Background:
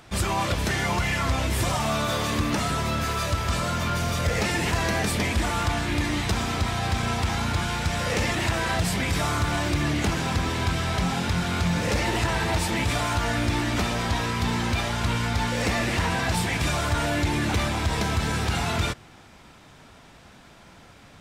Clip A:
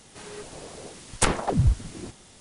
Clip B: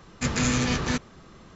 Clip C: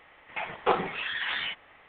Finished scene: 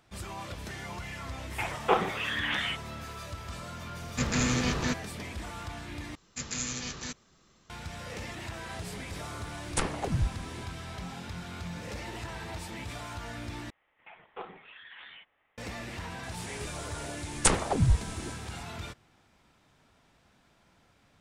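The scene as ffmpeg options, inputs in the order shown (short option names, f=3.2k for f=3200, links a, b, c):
-filter_complex "[3:a]asplit=2[a][b];[2:a]asplit=2[c][d];[1:a]asplit=2[e][f];[0:a]volume=-15dB[g];[d]crystalizer=i=4:c=0[h];[f]equalizer=f=7.7k:w=1.2:g=5.5[i];[g]asplit=3[j][k][l];[j]atrim=end=6.154[m];[h]atrim=end=1.55,asetpts=PTS-STARTPTS,volume=-16dB[n];[k]atrim=start=7.696:end=13.704[o];[b]atrim=end=1.88,asetpts=PTS-STARTPTS,volume=-17.5dB[p];[l]atrim=start=15.576[q];[a]atrim=end=1.88,asetpts=PTS-STARTPTS,afade=t=in:d=0.004:c=hsin,afade=t=out:st=1.876:d=0.004:c=hsin,adelay=1220[r];[c]atrim=end=1.55,asetpts=PTS-STARTPTS,volume=-3.5dB,afade=t=in:d=0.004:c=hsin,afade=t=out:st=1.546:d=0.004:c=hsin,adelay=3960[s];[e]atrim=end=2.4,asetpts=PTS-STARTPTS,volume=-8dB,afade=t=in:d=0.004:c=hsin,afade=t=out:st=2.396:d=0.004:c=hsin,adelay=8550[t];[i]atrim=end=2.4,asetpts=PTS-STARTPTS,volume=-3dB,afade=t=in:d=0.004:c=hsin,afade=t=out:st=2.396:d=0.004:c=hsin,adelay=16230[u];[m][n]acrossfade=d=0.004:c1=hsin:c2=hsin[v];[v][o]acrossfade=d=0.004:c1=hsin:c2=hsin[w];[w][p]acrossfade=d=0.004:c1=hsin:c2=hsin[x];[x][q]acrossfade=d=0.004:c1=hsin:c2=hsin[y];[y][r][s][t][u]amix=inputs=5:normalize=0"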